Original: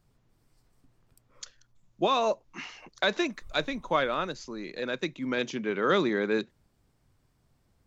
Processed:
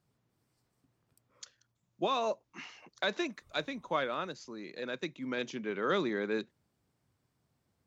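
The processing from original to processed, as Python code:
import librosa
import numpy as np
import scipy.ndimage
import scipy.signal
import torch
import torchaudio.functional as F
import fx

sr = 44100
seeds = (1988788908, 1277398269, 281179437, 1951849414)

y = scipy.signal.sosfilt(scipy.signal.butter(2, 94.0, 'highpass', fs=sr, output='sos'), x)
y = y * 10.0 ** (-6.0 / 20.0)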